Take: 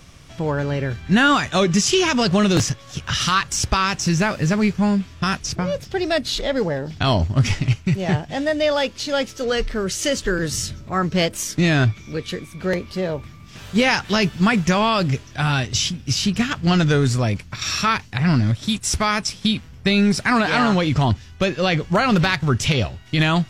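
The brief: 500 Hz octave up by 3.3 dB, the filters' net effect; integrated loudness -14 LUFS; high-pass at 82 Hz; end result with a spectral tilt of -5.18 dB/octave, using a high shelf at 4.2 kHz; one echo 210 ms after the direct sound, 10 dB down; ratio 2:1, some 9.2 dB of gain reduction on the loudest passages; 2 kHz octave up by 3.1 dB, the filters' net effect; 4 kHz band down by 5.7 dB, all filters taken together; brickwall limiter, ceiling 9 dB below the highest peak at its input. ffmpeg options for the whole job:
-af "highpass=82,equalizer=f=500:t=o:g=4,equalizer=f=2000:t=o:g=7,equalizer=f=4000:t=o:g=-6.5,highshelf=f=4200:g=-7.5,acompressor=threshold=0.0398:ratio=2,alimiter=limit=0.106:level=0:latency=1,aecho=1:1:210:0.316,volume=5.62"

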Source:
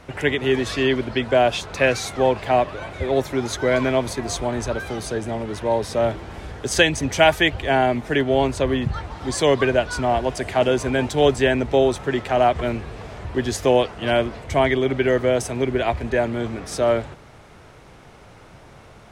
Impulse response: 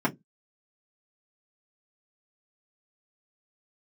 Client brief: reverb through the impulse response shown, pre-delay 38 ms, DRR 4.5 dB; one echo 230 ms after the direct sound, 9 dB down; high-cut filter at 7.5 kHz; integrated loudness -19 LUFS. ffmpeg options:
-filter_complex "[0:a]lowpass=7500,aecho=1:1:230:0.355,asplit=2[s0][s1];[1:a]atrim=start_sample=2205,adelay=38[s2];[s1][s2]afir=irnorm=-1:irlink=0,volume=0.158[s3];[s0][s3]amix=inputs=2:normalize=0,volume=0.891"

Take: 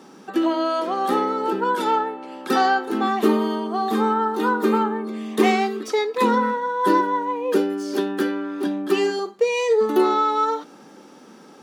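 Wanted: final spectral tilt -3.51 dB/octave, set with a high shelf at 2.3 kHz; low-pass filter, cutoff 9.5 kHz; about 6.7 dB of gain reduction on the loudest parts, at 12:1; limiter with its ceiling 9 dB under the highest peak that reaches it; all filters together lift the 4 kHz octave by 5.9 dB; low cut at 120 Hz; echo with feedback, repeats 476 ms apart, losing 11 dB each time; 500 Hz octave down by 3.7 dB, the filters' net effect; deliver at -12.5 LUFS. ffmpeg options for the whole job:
-af "highpass=120,lowpass=9500,equalizer=f=500:t=o:g=-5,highshelf=f=2300:g=5,equalizer=f=4000:t=o:g=3,acompressor=threshold=0.0891:ratio=12,alimiter=limit=0.0944:level=0:latency=1,aecho=1:1:476|952|1428:0.282|0.0789|0.0221,volume=6.31"

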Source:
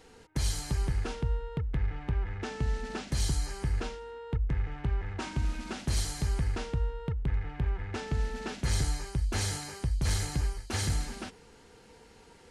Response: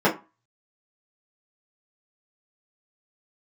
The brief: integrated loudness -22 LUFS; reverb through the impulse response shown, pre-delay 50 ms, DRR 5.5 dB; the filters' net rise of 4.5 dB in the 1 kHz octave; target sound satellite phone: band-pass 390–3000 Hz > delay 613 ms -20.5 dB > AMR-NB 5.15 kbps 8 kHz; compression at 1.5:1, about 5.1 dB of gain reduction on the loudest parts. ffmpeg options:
-filter_complex "[0:a]equalizer=f=1000:t=o:g=6,acompressor=threshold=0.0112:ratio=1.5,asplit=2[s0][s1];[1:a]atrim=start_sample=2205,adelay=50[s2];[s1][s2]afir=irnorm=-1:irlink=0,volume=0.0631[s3];[s0][s3]amix=inputs=2:normalize=0,highpass=390,lowpass=3000,aecho=1:1:613:0.0944,volume=15.8" -ar 8000 -c:a libopencore_amrnb -b:a 5150

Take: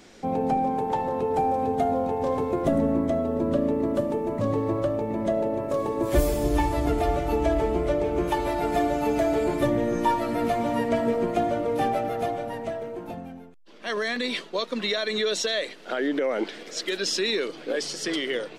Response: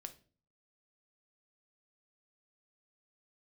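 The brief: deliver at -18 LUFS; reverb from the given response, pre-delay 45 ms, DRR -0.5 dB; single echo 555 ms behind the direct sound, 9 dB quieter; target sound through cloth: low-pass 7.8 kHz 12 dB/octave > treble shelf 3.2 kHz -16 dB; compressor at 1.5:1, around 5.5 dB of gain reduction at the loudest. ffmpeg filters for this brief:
-filter_complex "[0:a]acompressor=threshold=0.0251:ratio=1.5,aecho=1:1:555:0.355,asplit=2[s0][s1];[1:a]atrim=start_sample=2205,adelay=45[s2];[s1][s2]afir=irnorm=-1:irlink=0,volume=1.88[s3];[s0][s3]amix=inputs=2:normalize=0,lowpass=7800,highshelf=f=3200:g=-16,volume=2.82"

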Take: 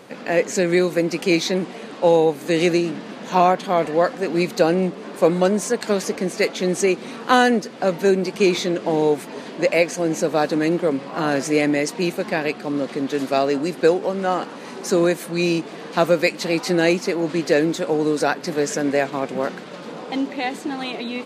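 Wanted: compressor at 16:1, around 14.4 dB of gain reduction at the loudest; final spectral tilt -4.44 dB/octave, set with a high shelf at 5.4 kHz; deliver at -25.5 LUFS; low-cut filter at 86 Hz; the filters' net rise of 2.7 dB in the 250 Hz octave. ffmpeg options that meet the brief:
-af "highpass=86,equalizer=f=250:t=o:g=4,highshelf=f=5400:g=3.5,acompressor=threshold=0.0631:ratio=16,volume=1.58"

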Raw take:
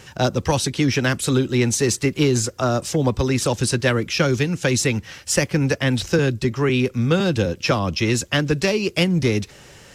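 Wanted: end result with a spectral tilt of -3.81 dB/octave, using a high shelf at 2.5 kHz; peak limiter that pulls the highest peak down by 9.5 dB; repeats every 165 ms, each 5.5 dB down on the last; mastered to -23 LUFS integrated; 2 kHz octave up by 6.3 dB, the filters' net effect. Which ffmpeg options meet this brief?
-af "equalizer=f=2000:t=o:g=4.5,highshelf=f=2500:g=7,alimiter=limit=0.316:level=0:latency=1,aecho=1:1:165|330|495|660|825|990|1155:0.531|0.281|0.149|0.079|0.0419|0.0222|0.0118,volume=0.631"

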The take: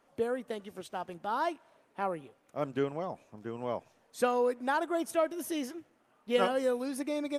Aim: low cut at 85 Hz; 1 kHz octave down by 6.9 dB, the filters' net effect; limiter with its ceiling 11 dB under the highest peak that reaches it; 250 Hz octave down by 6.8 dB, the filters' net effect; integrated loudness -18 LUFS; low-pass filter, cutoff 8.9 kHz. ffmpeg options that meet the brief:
-af "highpass=85,lowpass=8900,equalizer=f=250:t=o:g=-8,equalizer=f=1000:t=o:g=-9,volume=12.6,alimiter=limit=0.501:level=0:latency=1"

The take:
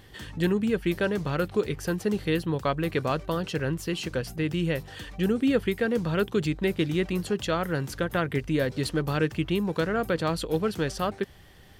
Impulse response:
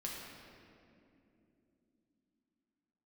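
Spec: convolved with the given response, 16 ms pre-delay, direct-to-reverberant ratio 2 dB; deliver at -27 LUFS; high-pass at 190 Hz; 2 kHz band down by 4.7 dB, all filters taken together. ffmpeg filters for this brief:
-filter_complex "[0:a]highpass=190,equalizer=f=2000:t=o:g=-6.5,asplit=2[s0][s1];[1:a]atrim=start_sample=2205,adelay=16[s2];[s1][s2]afir=irnorm=-1:irlink=0,volume=0.794[s3];[s0][s3]amix=inputs=2:normalize=0,volume=0.944"

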